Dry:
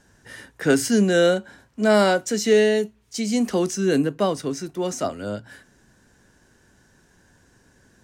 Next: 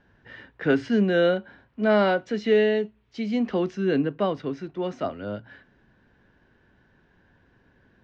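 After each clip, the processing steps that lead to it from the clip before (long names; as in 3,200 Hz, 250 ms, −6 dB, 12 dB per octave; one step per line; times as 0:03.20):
low-pass filter 3,400 Hz 24 dB per octave
level −3 dB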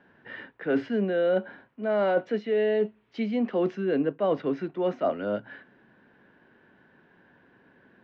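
dynamic equaliser 570 Hz, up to +6 dB, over −34 dBFS, Q 1.7
reversed playback
downward compressor 12 to 1, threshold −25 dBFS, peak gain reduction 14 dB
reversed playback
three-way crossover with the lows and the highs turned down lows −21 dB, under 150 Hz, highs −17 dB, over 3,600 Hz
level +4 dB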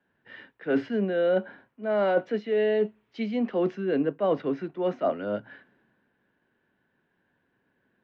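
multiband upward and downward expander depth 40%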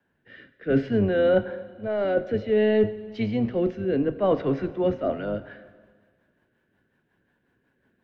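sub-octave generator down 1 octave, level −6 dB
rotating-speaker cabinet horn 0.6 Hz, later 5.5 Hz, at 0:04.71
dense smooth reverb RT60 1.7 s, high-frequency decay 0.95×, DRR 13 dB
level +4 dB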